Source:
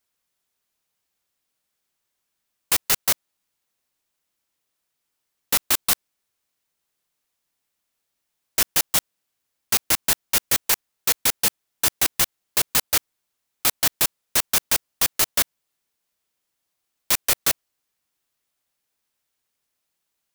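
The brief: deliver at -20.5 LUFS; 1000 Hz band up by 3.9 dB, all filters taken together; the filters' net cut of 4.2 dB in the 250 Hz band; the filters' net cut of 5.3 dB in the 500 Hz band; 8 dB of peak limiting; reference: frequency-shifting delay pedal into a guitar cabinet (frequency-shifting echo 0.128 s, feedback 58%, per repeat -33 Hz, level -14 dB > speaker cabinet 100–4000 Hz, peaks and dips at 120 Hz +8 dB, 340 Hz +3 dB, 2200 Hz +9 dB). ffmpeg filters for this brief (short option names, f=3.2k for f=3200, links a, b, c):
-filter_complex "[0:a]equalizer=f=250:t=o:g=-5,equalizer=f=500:t=o:g=-9,equalizer=f=1k:t=o:g=7,alimiter=limit=-12dB:level=0:latency=1,asplit=7[a][b][c][d][e][f][g];[b]adelay=128,afreqshift=-33,volume=-14dB[h];[c]adelay=256,afreqshift=-66,volume=-18.7dB[i];[d]adelay=384,afreqshift=-99,volume=-23.5dB[j];[e]adelay=512,afreqshift=-132,volume=-28.2dB[k];[f]adelay=640,afreqshift=-165,volume=-32.9dB[l];[g]adelay=768,afreqshift=-198,volume=-37.7dB[m];[a][h][i][j][k][l][m]amix=inputs=7:normalize=0,highpass=100,equalizer=f=120:t=q:w=4:g=8,equalizer=f=340:t=q:w=4:g=3,equalizer=f=2.2k:t=q:w=4:g=9,lowpass=f=4k:w=0.5412,lowpass=f=4k:w=1.3066,volume=10.5dB"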